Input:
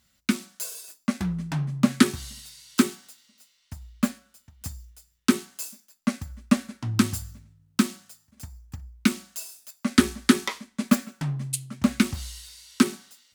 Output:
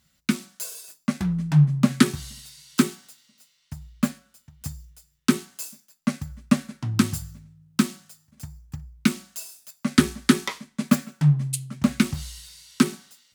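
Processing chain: peaking EQ 150 Hz +14.5 dB 0.22 oct

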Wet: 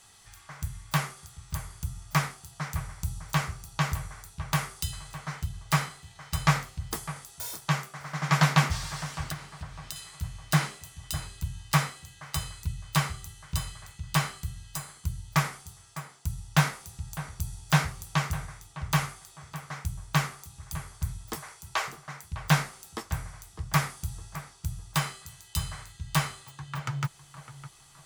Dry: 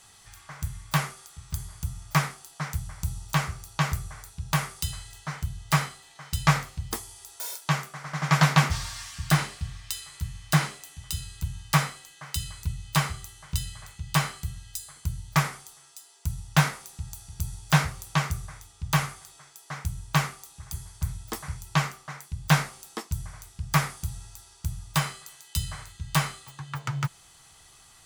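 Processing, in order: 9.22–9.96 s: compression 5:1, threshold -34 dBFS, peak gain reduction 16.5 dB; 21.35–21.88 s: steep high-pass 360 Hz; on a send: tape echo 607 ms, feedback 45%, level -12 dB, low-pass 1.9 kHz; on the sum: trim -2 dB

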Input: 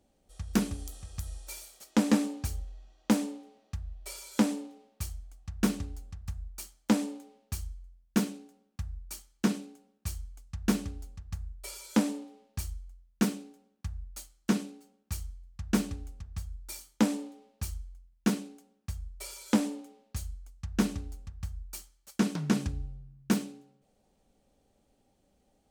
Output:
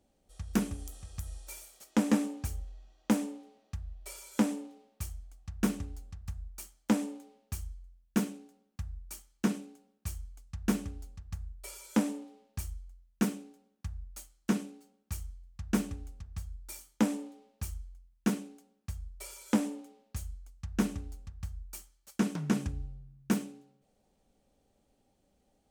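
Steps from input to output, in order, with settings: dynamic bell 4.3 kHz, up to -6 dB, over -58 dBFS, Q 2; trim -2 dB

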